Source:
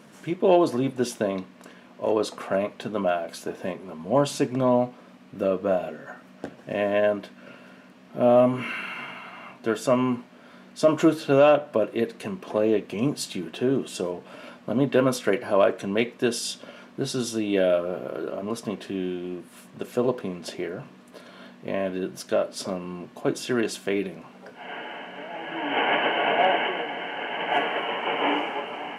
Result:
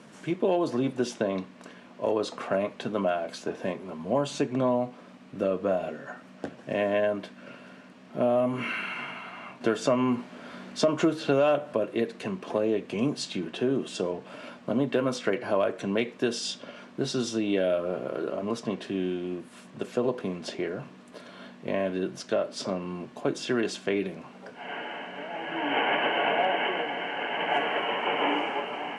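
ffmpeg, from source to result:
ffmpeg -i in.wav -filter_complex "[0:a]asettb=1/sr,asplit=3[link_01][link_02][link_03];[link_01]atrim=end=4.184[link_04];[link_02]atrim=start=4.18:end=4.69,asetpts=PTS-STARTPTS,afade=type=in:duration=0.004:curve=qsin,afade=type=out:start_time=0.506:duration=0.004:curve=qsin,bandreject=frequency=5100:width=8.4[link_05];[link_03]atrim=start=4.686[link_06];[link_04][link_05]acrossfade=duration=0.004:curve1=hsin:curve2=qsin[link_07];[link_07][link_06]acrossfade=duration=0.004:curve1=qsin:curve2=hsin,asplit=3[link_08][link_09][link_10];[link_08]atrim=end=9.612[link_11];[link_09]atrim=start=9.608:end=11.732,asetpts=PTS-STARTPTS,volume=6dB[link_12];[link_10]atrim=start=11.728[link_13];[link_11][link_12]acrossfade=duration=0.004:curve1=hsin:curve2=hsin[link_14];[link_14][link_13]acrossfade=duration=0.004:curve1=hsin:curve2=hsin,acrossover=split=120|7500[link_15][link_16][link_17];[link_15]acompressor=threshold=-48dB:ratio=4[link_18];[link_16]acompressor=threshold=-22dB:ratio=4[link_19];[link_17]acompressor=threshold=-59dB:ratio=4[link_20];[link_18][link_19][link_20]amix=inputs=3:normalize=0,lowpass=frequency=10000:width=0.5412,lowpass=frequency=10000:width=1.3066" out.wav

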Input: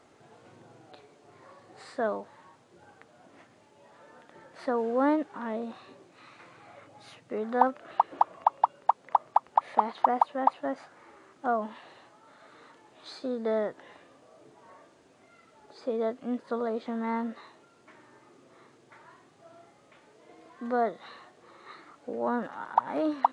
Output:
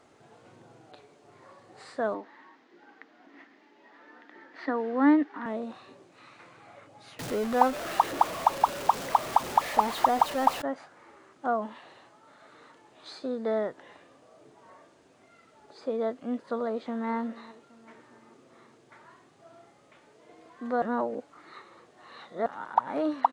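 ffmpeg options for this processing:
ffmpeg -i in.wav -filter_complex "[0:a]asettb=1/sr,asplit=3[link_01][link_02][link_03];[link_01]atrim=end=2.144[link_04];[link_02]atrim=start=2.14:end=5.46,asetpts=PTS-STARTPTS,afade=type=in:duration=0.004:curve=qsin,afade=type=out:start_time=3.316:duration=0.004:curve=qsin,highpass=frequency=230:width=0.5412,highpass=frequency=230:width=1.3066,equalizer=frequency=290:width_type=q:width=4:gain=8,equalizer=frequency=560:width_type=q:width=4:gain=-8,equalizer=frequency=1900:width_type=q:width=4:gain=9,lowpass=frequency=5200:width=0.5412,lowpass=frequency=5200:width=1.3066[link_05];[link_03]atrim=start=5.456[link_06];[link_04][link_05]acrossfade=duration=0.004:curve1=hsin:curve2=qsin[link_07];[link_07][link_06]acrossfade=duration=0.004:curve1=qsin:curve2=hsin,asettb=1/sr,asplit=3[link_08][link_09][link_10];[link_08]atrim=end=7.194[link_11];[link_09]atrim=start=7.19:end=10.62,asetpts=PTS-STARTPTS,afade=type=in:duration=0.004:curve=qsin,afade=type=out:start_time=3.426:duration=0.004:curve=qsin,aeval=exprs='val(0)+0.5*0.0282*sgn(val(0))':channel_layout=same[link_12];[link_10]atrim=start=10.616[link_13];[link_11][link_12]acrossfade=duration=0.004:curve1=hsin:curve2=qsin[link_14];[link_14][link_13]acrossfade=duration=0.004:curve1=qsin:curve2=hsin,asplit=2[link_15][link_16];[link_16]afade=type=in:start_time=16.68:duration=0.01,afade=type=out:start_time=17.1:duration=0.01,aecho=0:1:410|820|1230|1640|2050:0.125893|0.0692409|0.0380825|0.0209454|0.01152[link_17];[link_15][link_17]amix=inputs=2:normalize=0,asplit=3[link_18][link_19][link_20];[link_18]atrim=end=20.822[link_21];[link_19]atrim=start=20.818:end=22.462,asetpts=PTS-STARTPTS,areverse[link_22];[link_20]atrim=start=22.458[link_23];[link_21][link_22]acrossfade=duration=0.004:curve1=hsin:curve2=hsin[link_24];[link_24][link_23]acrossfade=duration=0.004:curve1=hsin:curve2=hsin" out.wav

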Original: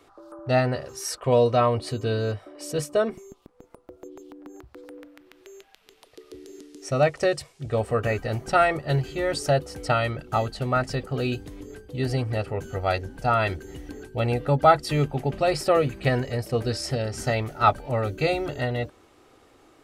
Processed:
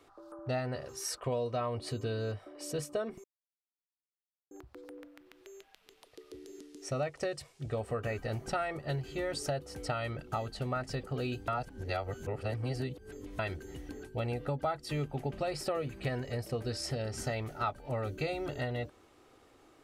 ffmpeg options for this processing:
ffmpeg -i in.wav -filter_complex "[0:a]asplit=5[link_01][link_02][link_03][link_04][link_05];[link_01]atrim=end=3.24,asetpts=PTS-STARTPTS,afade=type=out:start_time=3.236:duration=0.004:curve=hsin[link_06];[link_02]atrim=start=3.24:end=4.51,asetpts=PTS-STARTPTS,volume=0[link_07];[link_03]atrim=start=4.51:end=11.482,asetpts=PTS-STARTPTS,afade=type=in:duration=0.004:curve=hsin[link_08];[link_04]atrim=start=11.478:end=13.392,asetpts=PTS-STARTPTS,areverse[link_09];[link_05]atrim=start=13.388[link_10];[link_06][link_07][link_08]concat=n=3:v=0:a=1[link_11];[link_11][link_09]acrossfade=duration=0.004:curve1=hsin:curve2=hsin[link_12];[link_12][link_10]acrossfade=duration=0.004:curve1=hsin:curve2=hsin,acompressor=threshold=-26dB:ratio=4,volume=-5.5dB" out.wav

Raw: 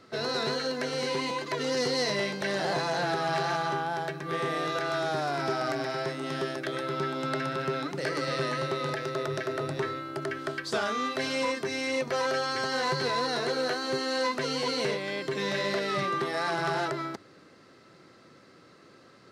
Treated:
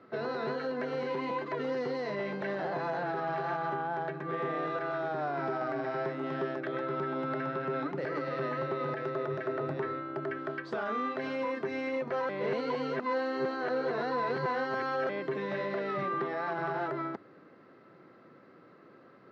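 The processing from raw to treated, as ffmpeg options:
ffmpeg -i in.wav -filter_complex "[0:a]asplit=3[link_01][link_02][link_03];[link_01]atrim=end=12.292[link_04];[link_02]atrim=start=12.288:end=15.092,asetpts=PTS-STARTPTS,areverse[link_05];[link_03]atrim=start=15.088[link_06];[link_04][link_05]acrossfade=duration=0.004:curve1=hsin:curve2=hsin[link_07];[link_07][link_06]acrossfade=duration=0.004:curve1=hsin:curve2=hsin,highpass=140,alimiter=limit=-23dB:level=0:latency=1:release=77,lowpass=1700" out.wav

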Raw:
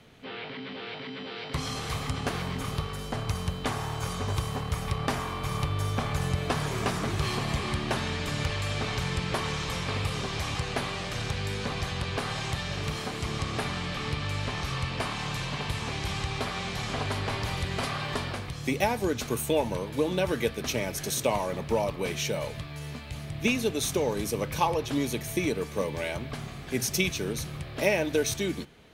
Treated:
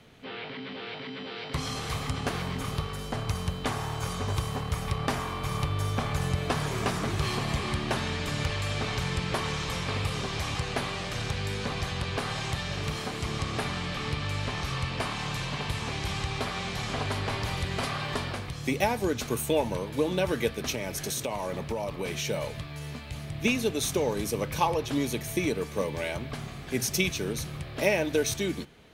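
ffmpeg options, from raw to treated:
ffmpeg -i in.wav -filter_complex "[0:a]asettb=1/sr,asplit=3[link_01][link_02][link_03];[link_01]atrim=end=20.704[link_04];[link_02]atrim=start=20.7:end=22.28,asetpts=PTS-STARTPTS,afade=type=in:duration=0.004:curve=qsin,afade=type=out:start_time=1.576:duration=0.004:curve=qsin,acompressor=threshold=-27dB:ratio=6:attack=3.2:release=140:knee=1:detection=peak[link_05];[link_03]atrim=start=22.276[link_06];[link_04][link_05]acrossfade=duration=0.004:curve1=hsin:curve2=qsin[link_07];[link_07][link_06]acrossfade=duration=0.004:curve1=qsin:curve2=hsin" out.wav

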